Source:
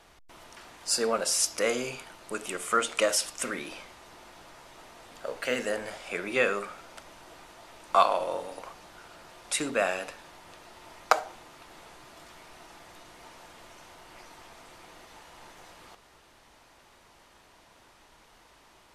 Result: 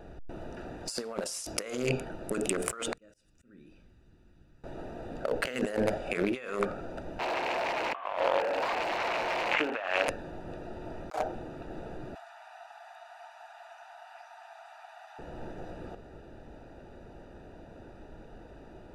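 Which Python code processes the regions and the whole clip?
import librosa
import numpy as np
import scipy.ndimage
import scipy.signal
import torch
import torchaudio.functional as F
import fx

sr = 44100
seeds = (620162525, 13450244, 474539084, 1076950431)

y = fx.chain(x, sr, fx.tone_stack(knobs='6-0-2'),
    fx.auto_swell(attack_ms=439.0), at=(2.93, 4.64))
y = fx.chain(y, sr, fx.delta_mod(bps=16000, step_db=-27.5),
    fx.highpass(hz=760.0, slope=12), at=(7.19, 10.08))
y = fx.chain(y, sr, fx.steep_highpass(hz=680.0, slope=96),
    fx.band_squash(depth_pct=100), at=(12.15, 15.19))
y = fx.wiener(y, sr, points=41)
y = fx.over_compress(y, sr, threshold_db=-41.0, ratio=-1.0)
y = y * librosa.db_to_amplitude(8.5)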